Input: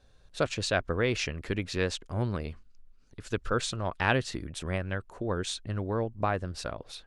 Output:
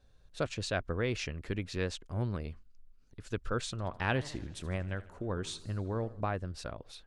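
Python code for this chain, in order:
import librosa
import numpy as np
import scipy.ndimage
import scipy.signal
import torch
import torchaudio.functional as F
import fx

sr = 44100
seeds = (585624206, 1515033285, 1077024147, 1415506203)

y = fx.low_shelf(x, sr, hz=250.0, db=4.5)
y = fx.echo_warbled(y, sr, ms=80, feedback_pct=61, rate_hz=2.8, cents=196, wet_db=-18, at=(3.7, 6.21))
y = y * librosa.db_to_amplitude(-6.5)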